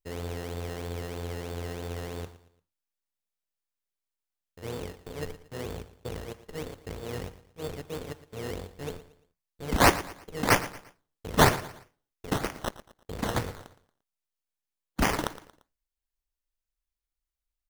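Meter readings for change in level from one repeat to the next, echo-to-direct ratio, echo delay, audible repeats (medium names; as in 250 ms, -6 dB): -8.5 dB, -15.5 dB, 115 ms, 3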